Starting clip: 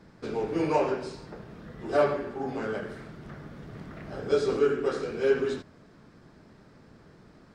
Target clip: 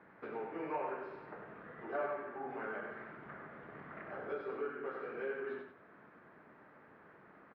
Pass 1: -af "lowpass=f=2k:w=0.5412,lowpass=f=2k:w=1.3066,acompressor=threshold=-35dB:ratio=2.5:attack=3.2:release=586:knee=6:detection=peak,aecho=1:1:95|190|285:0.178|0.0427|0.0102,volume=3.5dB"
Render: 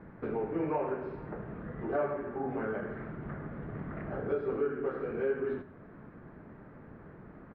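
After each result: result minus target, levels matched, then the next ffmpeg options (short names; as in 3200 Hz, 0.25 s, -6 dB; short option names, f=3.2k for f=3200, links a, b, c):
echo-to-direct -9.5 dB; 1000 Hz band -4.5 dB
-af "lowpass=f=2k:w=0.5412,lowpass=f=2k:w=1.3066,acompressor=threshold=-35dB:ratio=2.5:attack=3.2:release=586:knee=6:detection=peak,aecho=1:1:95|190|285:0.531|0.127|0.0306,volume=3.5dB"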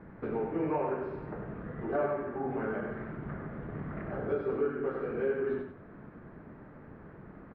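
1000 Hz band -4.0 dB
-af "lowpass=f=2k:w=0.5412,lowpass=f=2k:w=1.3066,acompressor=threshold=-35dB:ratio=2.5:attack=3.2:release=586:knee=6:detection=peak,highpass=f=1.2k:p=1,aecho=1:1:95|190|285:0.531|0.127|0.0306,volume=3.5dB"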